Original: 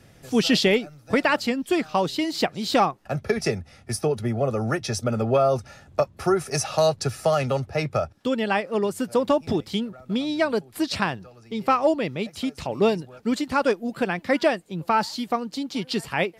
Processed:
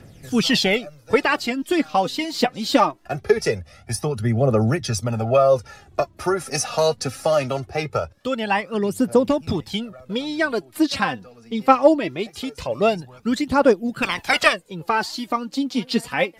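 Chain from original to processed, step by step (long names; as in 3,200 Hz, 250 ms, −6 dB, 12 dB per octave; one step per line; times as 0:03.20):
0:14.02–0:14.52: ceiling on every frequency bin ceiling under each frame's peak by 24 dB
phase shifter 0.22 Hz, delay 4.4 ms, feedback 58%
level +1 dB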